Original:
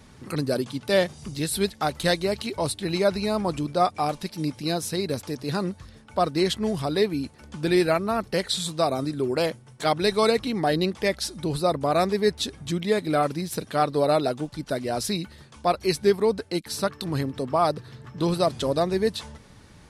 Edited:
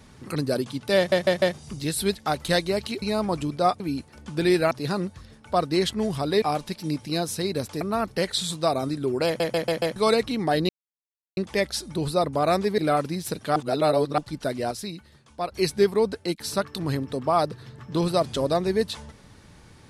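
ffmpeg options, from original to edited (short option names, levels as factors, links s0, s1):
-filter_complex "[0:a]asplit=20[s0][s1][s2][s3][s4][s5][s6][s7][s8][s9][s10][s11][s12][s13][s14][s15][s16][s17][s18][s19];[s0]atrim=end=1.122[s20];[s1]atrim=start=0.968:end=1.122[s21];[s2]atrim=start=0.968:end=1.122[s22];[s3]atrim=start=0.968:end=2.572[s23];[s4]atrim=start=3.178:end=3.962[s24];[s5]atrim=start=7.058:end=7.972[s25];[s6]atrim=start=5.348:end=7.062[s26];[s7]atrim=start=3.958:end=5.352[s27];[s8]atrim=start=7.968:end=9.562[s28];[s9]atrim=start=9.418:end=9.562[s29];[s10]atrim=start=9.418:end=9.562[s30];[s11]atrim=start=9.418:end=9.562[s31];[s12]atrim=start=9.418:end=9.562[s32];[s13]atrim=start=10.118:end=10.85,asetpts=PTS-STARTPTS,afade=t=out:st=0.728:d=0.004:c=hsin,apad=pad_dur=0.68[s33];[s14]atrim=start=10.85:end=12.262,asetpts=PTS-STARTPTS,afade=t=in:d=0.004:c=hsin[s34];[s15]atrim=start=13.038:end=13.822[s35];[s16]atrim=start=13.818:end=14.442,asetpts=PTS-STARTPTS,areverse[s36];[s17]atrim=start=14.438:end=14.972[s37];[s18]atrim=start=14.968:end=15.782,asetpts=PTS-STARTPTS,volume=0.447[s38];[s19]atrim=start=15.778[s39];[s20][s21]acrossfade=d=0.004:c1=hsin:c2=hsin[s40];[s40][s22]acrossfade=d=0.004:c1=hsin:c2=hsin[s41];[s41][s23]acrossfade=d=0.004:c1=hsin:c2=hsin[s42];[s42][s24]acrossfade=d=0.004:c1=hsin:c2=hsin[s43];[s43][s25]acrossfade=d=0.004:c1=hsin:c2=hsin[s44];[s44][s26]acrossfade=d=0.004:c1=hsin:c2=hsin[s45];[s45][s27]acrossfade=d=0.004:c1=hsin:c2=hsin[s46];[s46][s28]acrossfade=d=0.004:c1=hsin:c2=hsin[s47];[s47][s29]acrossfade=d=0.004:c1=hsin:c2=hsin[s48];[s48][s30]acrossfade=d=0.004:c1=hsin:c2=hsin[s49];[s49][s31]acrossfade=d=0.004:c1=hsin:c2=hsin[s50];[s50][s32]acrossfade=d=0.004:c1=hsin:c2=hsin[s51];[s33][s34]concat=n=2:v=0:a=1[s52];[s51][s52]acrossfade=d=0.004:c1=hsin:c2=hsin[s53];[s53][s35]acrossfade=d=0.004:c1=hsin:c2=hsin[s54];[s54][s36]acrossfade=d=0.004:c1=hsin:c2=hsin[s55];[s55][s37]acrossfade=d=0.004:c1=hsin:c2=hsin[s56];[s56][s38]acrossfade=d=0.004:c1=hsin:c2=hsin[s57];[s57][s39]acrossfade=d=0.004:c1=hsin:c2=hsin"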